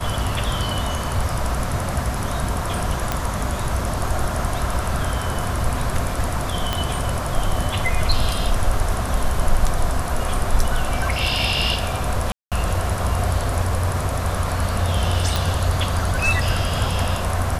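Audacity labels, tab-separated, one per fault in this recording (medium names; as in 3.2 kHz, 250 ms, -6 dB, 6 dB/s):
3.120000	3.120000	pop -6 dBFS
6.730000	6.730000	pop -6 dBFS
12.320000	12.520000	dropout 197 ms
15.360000	15.360000	pop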